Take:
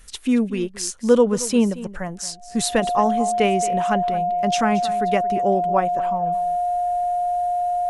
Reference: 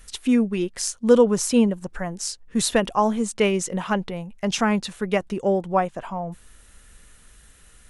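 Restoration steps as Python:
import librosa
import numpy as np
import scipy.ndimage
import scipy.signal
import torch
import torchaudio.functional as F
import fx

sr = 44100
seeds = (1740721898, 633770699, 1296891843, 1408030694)

y = fx.notch(x, sr, hz=710.0, q=30.0)
y = fx.fix_echo_inverse(y, sr, delay_ms=225, level_db=-16.5)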